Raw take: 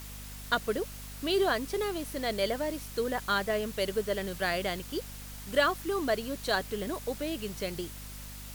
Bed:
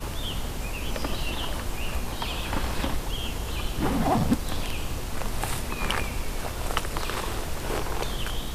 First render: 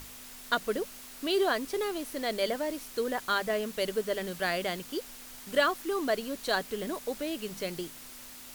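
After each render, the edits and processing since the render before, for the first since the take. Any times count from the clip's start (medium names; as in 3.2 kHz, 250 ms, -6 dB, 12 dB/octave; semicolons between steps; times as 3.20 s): hum notches 50/100/150/200 Hz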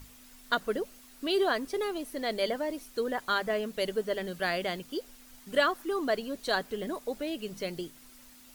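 noise reduction 9 dB, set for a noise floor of -47 dBFS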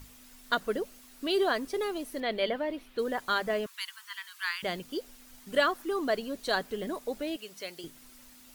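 2.20–2.99 s: resonant high shelf 4.5 kHz -11.5 dB, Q 1.5; 3.66–4.63 s: steep high-pass 920 Hz 96 dB/octave; 7.36–7.84 s: high-pass 990 Hz 6 dB/octave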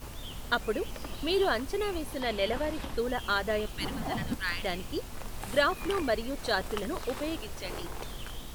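add bed -10.5 dB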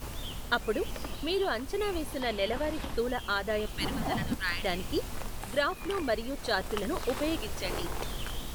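gain riding within 4 dB 0.5 s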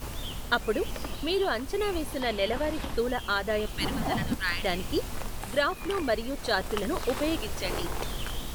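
trim +2.5 dB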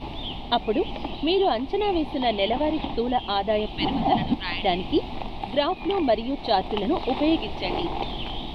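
FFT filter 100 Hz 0 dB, 330 Hz +9 dB, 510 Hz -1 dB, 800 Hz +13 dB, 1.5 kHz -13 dB, 2.2 kHz +3 dB, 3.7 kHz +7 dB, 6.7 kHz -24 dB, 15 kHz -29 dB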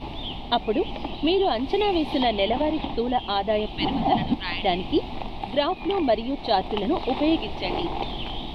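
1.24–2.62 s: three bands compressed up and down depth 100%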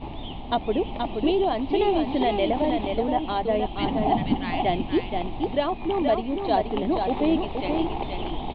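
distance through air 350 m; delay 476 ms -5 dB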